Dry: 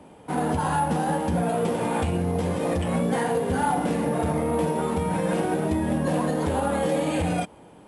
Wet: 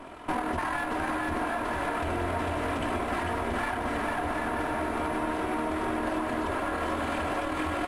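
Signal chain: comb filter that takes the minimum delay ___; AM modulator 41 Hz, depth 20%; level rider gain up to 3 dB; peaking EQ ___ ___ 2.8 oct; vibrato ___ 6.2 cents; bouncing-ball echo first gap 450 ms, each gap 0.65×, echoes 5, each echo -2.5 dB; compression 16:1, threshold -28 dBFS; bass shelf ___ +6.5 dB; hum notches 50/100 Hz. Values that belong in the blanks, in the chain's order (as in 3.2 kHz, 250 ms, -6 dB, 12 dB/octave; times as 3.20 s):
3 ms, 1.6 kHz, +11.5 dB, 14 Hz, 280 Hz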